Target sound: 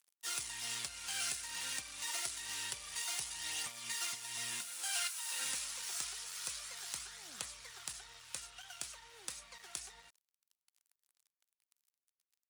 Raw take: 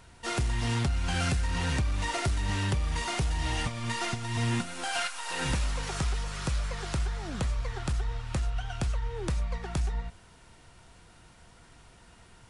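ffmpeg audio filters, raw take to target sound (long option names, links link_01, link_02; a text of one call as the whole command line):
ffmpeg -i in.wav -af "aphaser=in_gain=1:out_gain=1:delay=3.9:decay=0.26:speed=0.27:type=triangular,aeval=exprs='sgn(val(0))*max(abs(val(0))-0.00562,0)':channel_layout=same,aderivative,volume=2.5dB" out.wav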